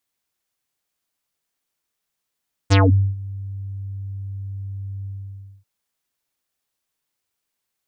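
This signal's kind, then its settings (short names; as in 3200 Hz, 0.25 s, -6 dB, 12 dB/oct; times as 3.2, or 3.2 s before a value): synth note square G2 24 dB/oct, low-pass 150 Hz, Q 3.6, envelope 6 oct, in 0.22 s, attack 23 ms, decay 0.43 s, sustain -21.5 dB, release 0.59 s, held 2.35 s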